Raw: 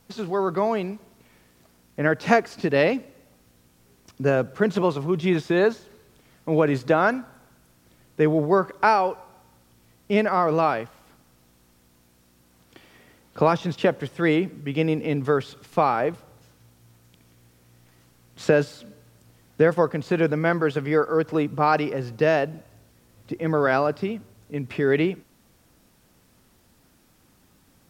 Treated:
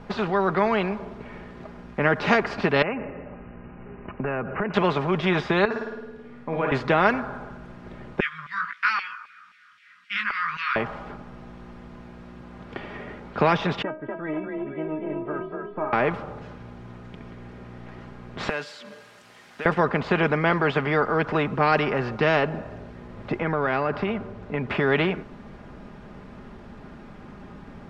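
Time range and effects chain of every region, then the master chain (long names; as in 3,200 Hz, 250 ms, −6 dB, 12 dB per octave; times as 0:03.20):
0:02.82–0:04.74: linear-phase brick-wall low-pass 3,000 Hz + downward compressor, threshold −30 dBFS
0:05.65–0:06.72: tuned comb filter 240 Hz, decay 0.37 s, mix 80% + flutter between parallel walls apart 9.2 metres, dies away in 0.86 s
0:08.20–0:10.76: inverse Chebyshev band-stop filter 310–860 Hz + chorus effect 1.6 Hz, delay 16 ms, depth 3.1 ms + auto-filter high-pass saw down 3.8 Hz 840–2,600 Hz
0:13.82–0:15.93: low-pass filter 1,200 Hz + stiff-string resonator 310 Hz, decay 0.22 s, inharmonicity 0.002 + echo with shifted repeats 241 ms, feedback 35%, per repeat +33 Hz, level −6 dB
0:18.49–0:19.66: mu-law and A-law mismatch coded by mu + first difference + upward compression, threshold −42 dBFS
0:23.42–0:24.70: high-shelf EQ 5,300 Hz −6.5 dB + downward compressor 3 to 1, threshold −25 dBFS
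whole clip: low-pass filter 1,700 Hz 12 dB per octave; comb filter 4.9 ms, depth 43%; every bin compressed towards the loudest bin 2 to 1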